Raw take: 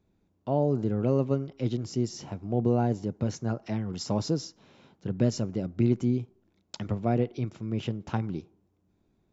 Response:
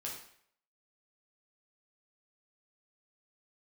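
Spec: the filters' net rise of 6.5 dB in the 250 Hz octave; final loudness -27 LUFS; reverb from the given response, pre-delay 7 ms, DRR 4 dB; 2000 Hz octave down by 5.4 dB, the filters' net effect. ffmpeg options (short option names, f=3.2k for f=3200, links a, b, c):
-filter_complex "[0:a]equalizer=f=250:t=o:g=7.5,equalizer=f=2k:t=o:g=-8,asplit=2[a][b];[1:a]atrim=start_sample=2205,adelay=7[c];[b][c]afir=irnorm=-1:irlink=0,volume=-3.5dB[d];[a][d]amix=inputs=2:normalize=0,volume=-2.5dB"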